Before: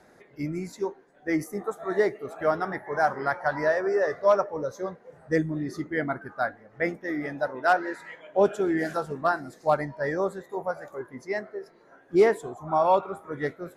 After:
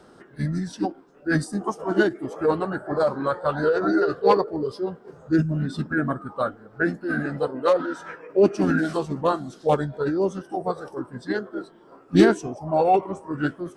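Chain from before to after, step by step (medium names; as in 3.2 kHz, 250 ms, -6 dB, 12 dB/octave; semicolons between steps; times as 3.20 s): dynamic bell 1 kHz, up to -5 dB, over -36 dBFS, Q 1.3; formant shift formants -4 st; trim +5.5 dB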